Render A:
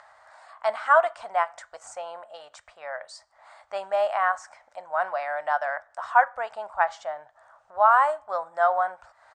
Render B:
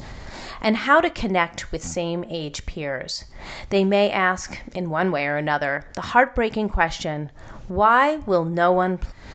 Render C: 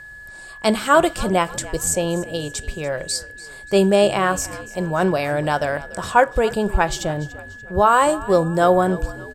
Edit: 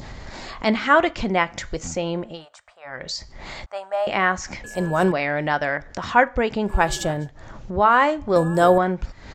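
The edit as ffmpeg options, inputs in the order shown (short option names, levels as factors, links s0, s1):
-filter_complex "[0:a]asplit=2[s0][s1];[2:a]asplit=3[s2][s3][s4];[1:a]asplit=6[s5][s6][s7][s8][s9][s10];[s5]atrim=end=2.46[s11];[s0]atrim=start=2.22:end=3.08[s12];[s6]atrim=start=2.84:end=3.662[s13];[s1]atrim=start=3.658:end=4.072[s14];[s7]atrim=start=4.068:end=4.642[s15];[s2]atrim=start=4.638:end=5.122[s16];[s8]atrim=start=5.118:end=6.87[s17];[s3]atrim=start=6.63:end=7.31[s18];[s9]atrim=start=7.07:end=8.362[s19];[s4]atrim=start=8.358:end=8.782[s20];[s10]atrim=start=8.778[s21];[s11][s12]acrossfade=d=0.24:c1=tri:c2=tri[s22];[s22][s13]acrossfade=d=0.24:c1=tri:c2=tri[s23];[s23][s14]acrossfade=d=0.004:c1=hsin:c2=hsin[s24];[s24][s15]acrossfade=d=0.004:c1=hsin:c2=hsin[s25];[s25][s16]acrossfade=d=0.004:c1=hsin:c2=hsin[s26];[s26][s17]acrossfade=d=0.004:c1=hsin:c2=hsin[s27];[s27][s18]acrossfade=d=0.24:c1=tri:c2=tri[s28];[s28][s19]acrossfade=d=0.24:c1=tri:c2=tri[s29];[s29][s20]acrossfade=d=0.004:c1=hsin:c2=hsin[s30];[s30][s21]acrossfade=d=0.004:c1=hsin:c2=hsin"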